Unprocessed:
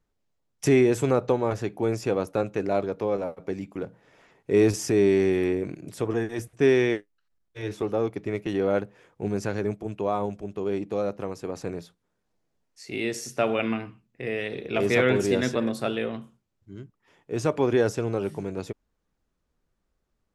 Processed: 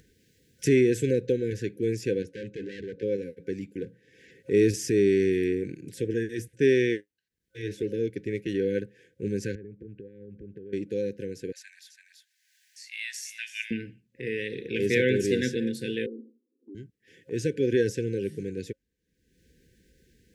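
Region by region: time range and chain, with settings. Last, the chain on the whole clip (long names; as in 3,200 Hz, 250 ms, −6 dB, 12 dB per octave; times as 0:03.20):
0:02.22–0:03.03: gain into a clipping stage and back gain 31 dB + high-frequency loss of the air 76 metres
0:09.55–0:10.73: low-pass filter 1,400 Hz + downward compressor 10 to 1, threshold −38 dBFS + low-shelf EQ 110 Hz +7.5 dB
0:11.52–0:13.71: linear-phase brick-wall high-pass 890 Hz + single-tap delay 334 ms −13 dB
0:16.06–0:16.75: Chebyshev band-pass filter 240–800 Hz, order 5 + downward compressor 1.5 to 1, threshold −51 dBFS + low-shelf EQ 490 Hz +11.5 dB
whole clip: brick-wall band-stop 530–1,500 Hz; high-pass filter 57 Hz; upward compression, threshold −43 dBFS; level −1.5 dB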